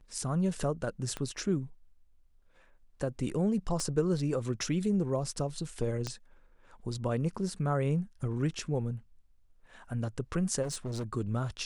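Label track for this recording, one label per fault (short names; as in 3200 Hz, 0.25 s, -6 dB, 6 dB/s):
1.170000	1.170000	pop -21 dBFS
3.800000	3.800000	pop -21 dBFS
6.070000	6.070000	pop -21 dBFS
10.620000	11.040000	clipped -32 dBFS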